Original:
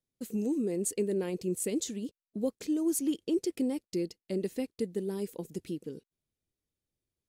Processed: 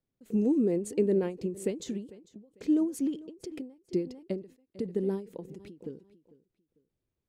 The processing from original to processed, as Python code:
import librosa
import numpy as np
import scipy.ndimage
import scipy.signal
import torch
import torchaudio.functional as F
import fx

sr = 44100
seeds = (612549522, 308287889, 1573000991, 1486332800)

p1 = fx.lowpass(x, sr, hz=1300.0, slope=6)
p2 = p1 + fx.echo_feedback(p1, sr, ms=448, feedback_pct=26, wet_db=-20.5, dry=0)
p3 = fx.end_taper(p2, sr, db_per_s=150.0)
y = F.gain(torch.from_numpy(p3), 5.5).numpy()